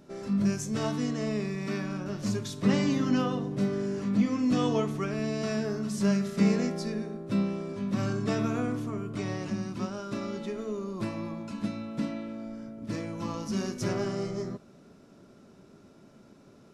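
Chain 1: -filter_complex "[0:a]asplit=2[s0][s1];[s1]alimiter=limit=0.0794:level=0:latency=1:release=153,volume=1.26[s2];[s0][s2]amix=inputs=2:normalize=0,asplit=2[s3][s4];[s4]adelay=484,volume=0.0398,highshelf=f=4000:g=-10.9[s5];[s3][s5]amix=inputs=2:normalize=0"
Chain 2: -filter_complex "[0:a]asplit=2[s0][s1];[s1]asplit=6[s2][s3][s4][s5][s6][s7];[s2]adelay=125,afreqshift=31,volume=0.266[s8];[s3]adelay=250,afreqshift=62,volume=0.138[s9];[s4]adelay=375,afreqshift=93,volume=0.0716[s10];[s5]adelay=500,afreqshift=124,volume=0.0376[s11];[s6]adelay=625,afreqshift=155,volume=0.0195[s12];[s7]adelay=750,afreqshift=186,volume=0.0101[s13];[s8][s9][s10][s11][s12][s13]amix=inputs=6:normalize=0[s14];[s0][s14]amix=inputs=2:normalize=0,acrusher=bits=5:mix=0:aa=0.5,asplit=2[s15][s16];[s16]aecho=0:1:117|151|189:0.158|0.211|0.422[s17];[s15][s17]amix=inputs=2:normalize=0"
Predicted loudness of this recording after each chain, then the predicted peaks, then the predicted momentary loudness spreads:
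-25.0 LUFS, -29.0 LUFS; -9.5 dBFS, -12.5 dBFS; 8 LU, 9 LU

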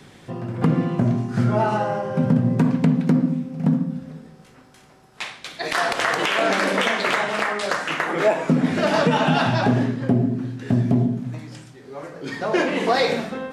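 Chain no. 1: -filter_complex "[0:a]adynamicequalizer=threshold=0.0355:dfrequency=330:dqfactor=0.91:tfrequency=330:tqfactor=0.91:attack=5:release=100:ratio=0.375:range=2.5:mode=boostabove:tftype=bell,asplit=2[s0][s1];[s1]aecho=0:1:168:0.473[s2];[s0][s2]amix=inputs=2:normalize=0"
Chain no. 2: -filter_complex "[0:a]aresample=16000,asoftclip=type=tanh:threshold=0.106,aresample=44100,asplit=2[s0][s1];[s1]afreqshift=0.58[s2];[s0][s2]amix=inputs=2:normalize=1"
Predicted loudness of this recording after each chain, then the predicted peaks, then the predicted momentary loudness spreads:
-18.0 LUFS, -28.5 LUFS; -2.5 dBFS, -15.0 dBFS; 16 LU, 11 LU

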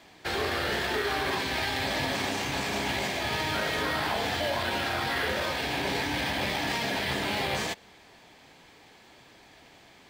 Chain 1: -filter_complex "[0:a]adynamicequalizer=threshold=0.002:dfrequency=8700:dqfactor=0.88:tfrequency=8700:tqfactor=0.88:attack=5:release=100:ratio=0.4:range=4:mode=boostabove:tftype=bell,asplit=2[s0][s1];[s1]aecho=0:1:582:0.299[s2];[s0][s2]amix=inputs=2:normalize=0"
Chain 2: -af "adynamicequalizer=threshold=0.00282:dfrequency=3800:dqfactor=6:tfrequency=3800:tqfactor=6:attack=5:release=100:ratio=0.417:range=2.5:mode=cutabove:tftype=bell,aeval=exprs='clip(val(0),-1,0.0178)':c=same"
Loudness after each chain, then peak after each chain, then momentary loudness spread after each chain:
-27.5 LUFS, -31.5 LUFS; -16.0 dBFS, -17.0 dBFS; 3 LU, 1 LU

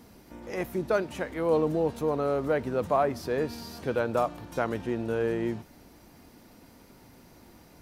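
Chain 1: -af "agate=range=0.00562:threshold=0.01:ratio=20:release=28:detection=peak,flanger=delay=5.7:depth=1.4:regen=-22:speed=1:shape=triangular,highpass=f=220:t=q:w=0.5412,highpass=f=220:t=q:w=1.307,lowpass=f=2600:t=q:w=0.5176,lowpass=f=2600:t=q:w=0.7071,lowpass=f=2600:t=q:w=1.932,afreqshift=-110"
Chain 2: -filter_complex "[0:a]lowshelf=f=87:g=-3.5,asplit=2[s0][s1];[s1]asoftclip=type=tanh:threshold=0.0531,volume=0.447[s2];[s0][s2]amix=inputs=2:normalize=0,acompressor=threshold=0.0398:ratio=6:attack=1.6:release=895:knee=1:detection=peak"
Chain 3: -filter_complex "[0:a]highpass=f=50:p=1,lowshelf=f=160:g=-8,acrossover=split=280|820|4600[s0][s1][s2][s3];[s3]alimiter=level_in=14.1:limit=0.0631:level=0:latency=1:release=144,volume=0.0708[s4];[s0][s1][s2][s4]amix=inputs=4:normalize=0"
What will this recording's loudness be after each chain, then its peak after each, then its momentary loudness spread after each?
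-33.0 LUFS, -36.0 LUFS, -30.0 LUFS; -16.5 dBFS, -23.0 dBFS, -14.0 dBFS; 9 LU, 17 LU, 9 LU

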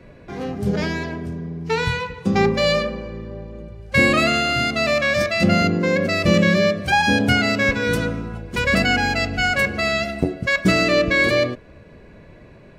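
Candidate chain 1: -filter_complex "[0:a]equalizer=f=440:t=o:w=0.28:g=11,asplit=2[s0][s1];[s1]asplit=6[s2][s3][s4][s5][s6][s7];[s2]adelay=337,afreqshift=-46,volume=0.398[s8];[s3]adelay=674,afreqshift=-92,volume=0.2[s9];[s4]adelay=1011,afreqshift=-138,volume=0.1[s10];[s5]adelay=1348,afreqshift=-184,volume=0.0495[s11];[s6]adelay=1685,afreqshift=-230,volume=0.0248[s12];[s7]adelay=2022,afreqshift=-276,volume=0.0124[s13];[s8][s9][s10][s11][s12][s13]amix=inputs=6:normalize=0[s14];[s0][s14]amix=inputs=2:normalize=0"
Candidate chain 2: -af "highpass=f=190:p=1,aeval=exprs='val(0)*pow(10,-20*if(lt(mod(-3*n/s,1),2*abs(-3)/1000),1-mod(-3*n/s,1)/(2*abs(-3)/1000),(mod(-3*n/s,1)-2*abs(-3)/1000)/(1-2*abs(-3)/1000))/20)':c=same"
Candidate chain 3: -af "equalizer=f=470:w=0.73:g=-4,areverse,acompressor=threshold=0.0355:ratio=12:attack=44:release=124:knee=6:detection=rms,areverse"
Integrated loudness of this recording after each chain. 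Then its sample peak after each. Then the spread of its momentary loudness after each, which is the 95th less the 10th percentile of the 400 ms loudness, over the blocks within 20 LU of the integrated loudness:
-17.5 LUFS, -26.0 LUFS, -30.5 LUFS; -1.0 dBFS, -5.0 dBFS, -16.5 dBFS; 13 LU, 17 LU, 9 LU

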